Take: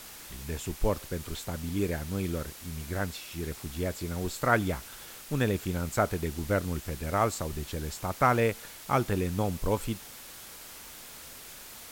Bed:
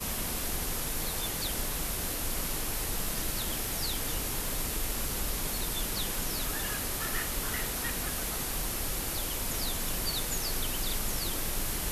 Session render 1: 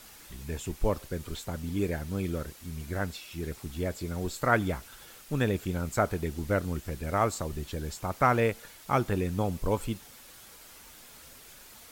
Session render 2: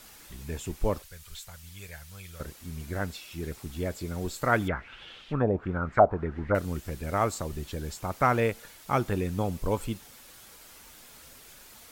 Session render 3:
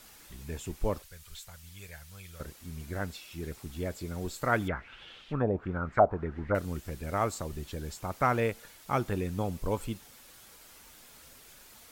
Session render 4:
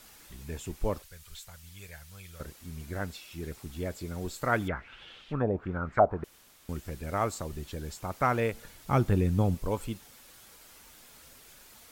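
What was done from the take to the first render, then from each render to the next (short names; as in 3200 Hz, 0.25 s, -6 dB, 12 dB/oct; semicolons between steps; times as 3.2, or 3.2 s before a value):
denoiser 6 dB, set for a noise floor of -47 dBFS
1.02–2.4 passive tone stack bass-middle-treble 10-0-10; 4.68–6.55 envelope low-pass 720–3600 Hz down, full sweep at -22 dBFS
gain -3 dB
6.24–6.69 room tone; 8.53–9.55 low shelf 270 Hz +10.5 dB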